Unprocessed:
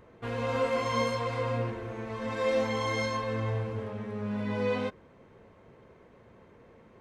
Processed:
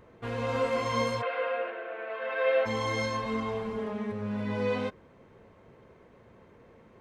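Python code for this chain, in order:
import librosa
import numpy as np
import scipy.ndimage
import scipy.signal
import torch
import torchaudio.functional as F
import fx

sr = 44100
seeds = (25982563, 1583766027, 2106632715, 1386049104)

y = fx.cabinet(x, sr, low_hz=430.0, low_slope=24, high_hz=3300.0, hz=(640.0, 920.0, 1500.0, 2700.0), db=(10, -7, 10, 6), at=(1.21, 2.65), fade=0.02)
y = fx.comb(y, sr, ms=4.8, depth=0.85, at=(3.25, 4.12))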